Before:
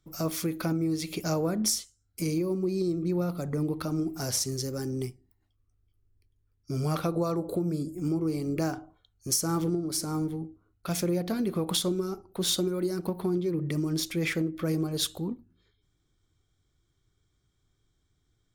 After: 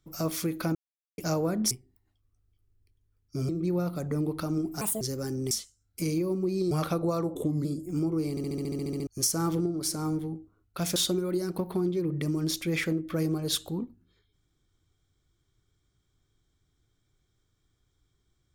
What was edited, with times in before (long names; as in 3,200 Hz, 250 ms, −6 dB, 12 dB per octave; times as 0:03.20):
0:00.75–0:01.18: silence
0:01.71–0:02.91: swap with 0:05.06–0:06.84
0:04.23–0:04.56: play speed 165%
0:07.48–0:07.74: play speed 87%
0:08.39: stutter in place 0.07 s, 11 plays
0:11.05–0:12.45: remove